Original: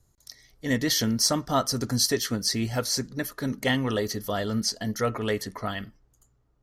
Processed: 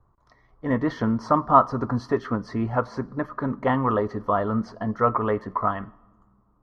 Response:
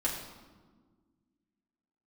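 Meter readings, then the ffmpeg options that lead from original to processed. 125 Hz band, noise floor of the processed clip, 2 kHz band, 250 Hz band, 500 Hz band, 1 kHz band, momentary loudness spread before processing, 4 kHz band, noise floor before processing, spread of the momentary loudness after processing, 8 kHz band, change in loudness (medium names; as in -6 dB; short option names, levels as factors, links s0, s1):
+1.5 dB, -63 dBFS, -2.5 dB, +2.5 dB, +4.0 dB, +10.5 dB, 10 LU, -20.5 dB, -67 dBFS, 12 LU, under -25 dB, +2.0 dB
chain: -filter_complex "[0:a]lowpass=f=1100:t=q:w=5.7,asplit=2[s0][s1];[1:a]atrim=start_sample=2205,highshelf=f=3800:g=8.5[s2];[s1][s2]afir=irnorm=-1:irlink=0,volume=0.0473[s3];[s0][s3]amix=inputs=2:normalize=0,volume=1.19"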